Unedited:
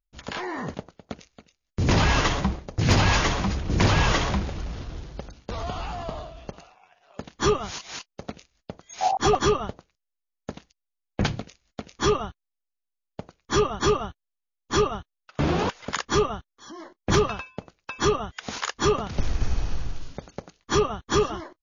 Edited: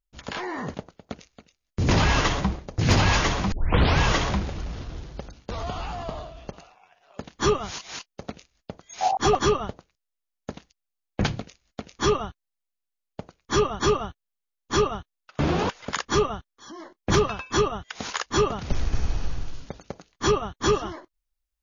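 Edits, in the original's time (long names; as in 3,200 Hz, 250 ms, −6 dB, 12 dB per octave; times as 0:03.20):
0:03.52: tape start 0.47 s
0:17.50–0:17.98: remove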